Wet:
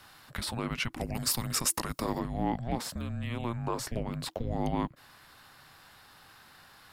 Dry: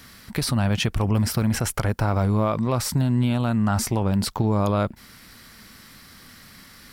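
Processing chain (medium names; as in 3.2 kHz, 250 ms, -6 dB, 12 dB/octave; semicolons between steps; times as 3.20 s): tone controls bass -15 dB, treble -5 dB, from 0.98 s treble +7 dB, from 2.18 s treble -7 dB; frequency shift -350 Hz; trim -5 dB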